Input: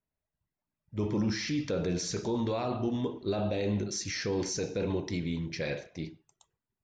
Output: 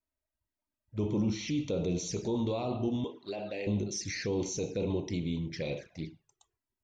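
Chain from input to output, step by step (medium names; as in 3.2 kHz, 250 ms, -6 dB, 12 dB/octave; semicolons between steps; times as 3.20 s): 3.04–3.67 s: frequency weighting A; touch-sensitive flanger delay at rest 3.2 ms, full sweep at -30 dBFS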